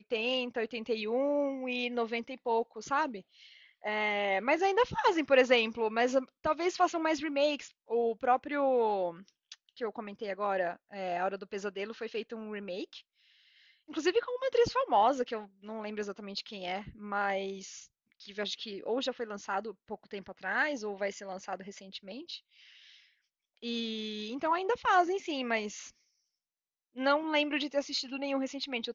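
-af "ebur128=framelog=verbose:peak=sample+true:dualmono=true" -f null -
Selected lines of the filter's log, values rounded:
Integrated loudness:
  I:         -29.0 LUFS
  Threshold: -39.8 LUFS
Loudness range:
  LRA:         8.9 LU
  Threshold: -50.0 LUFS
  LRA low:   -34.9 LUFS
  LRA high:  -26.0 LUFS
Sample peak:
  Peak:      -11.6 dBFS
True peak:
  Peak:      -11.6 dBFS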